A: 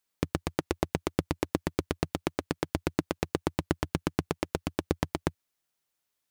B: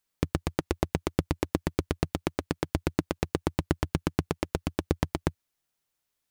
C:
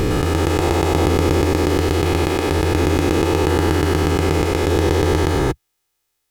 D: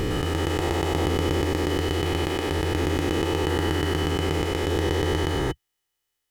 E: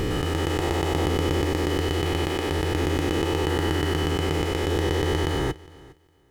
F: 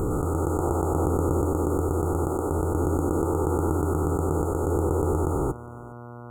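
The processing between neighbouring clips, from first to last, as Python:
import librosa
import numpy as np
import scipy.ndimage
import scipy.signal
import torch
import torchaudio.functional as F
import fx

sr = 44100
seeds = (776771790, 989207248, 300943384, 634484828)

y1 = fx.low_shelf(x, sr, hz=120.0, db=7.0)
y2 = fx.spec_dilate(y1, sr, span_ms=480)
y2 = y2 + 0.51 * np.pad(y2, (int(2.4 * sr / 1000.0), 0))[:len(y2)]
y2 = y2 * 10.0 ** (2.0 / 20.0)
y3 = fx.small_body(y2, sr, hz=(1900.0, 3000.0), ring_ms=60, db=15)
y3 = y3 * 10.0 ** (-7.5 / 20.0)
y4 = fx.echo_feedback(y3, sr, ms=409, feedback_pct=19, wet_db=-22)
y5 = fx.dmg_buzz(y4, sr, base_hz=120.0, harmonics=31, level_db=-40.0, tilt_db=-4, odd_only=False)
y5 = fx.brickwall_bandstop(y5, sr, low_hz=1500.0, high_hz=6600.0)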